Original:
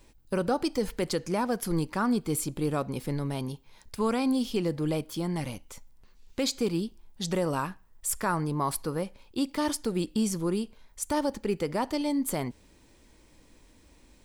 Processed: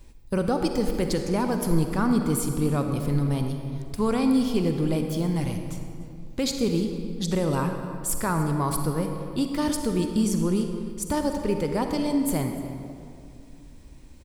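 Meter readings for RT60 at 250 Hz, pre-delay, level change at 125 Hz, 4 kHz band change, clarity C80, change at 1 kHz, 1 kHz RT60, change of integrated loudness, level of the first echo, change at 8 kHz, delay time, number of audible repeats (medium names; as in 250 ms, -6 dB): 2.9 s, 39 ms, +7.5 dB, +1.5 dB, 6.0 dB, +2.0 dB, 2.3 s, +4.0 dB, -20.0 dB, +2.0 dB, 294 ms, 1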